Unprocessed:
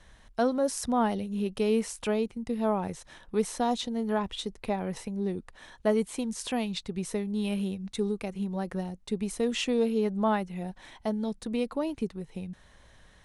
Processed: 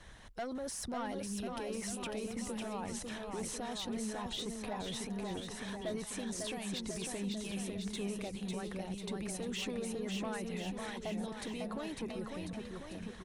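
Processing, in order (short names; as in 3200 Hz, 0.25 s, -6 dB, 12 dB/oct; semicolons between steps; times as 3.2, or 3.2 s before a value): harmonic-percussive split harmonic -10 dB; soft clip -29 dBFS, distortion -13 dB; limiter -40.5 dBFS, peak gain reduction 11.5 dB; bouncing-ball echo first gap 0.55 s, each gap 0.9×, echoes 5; gain +6 dB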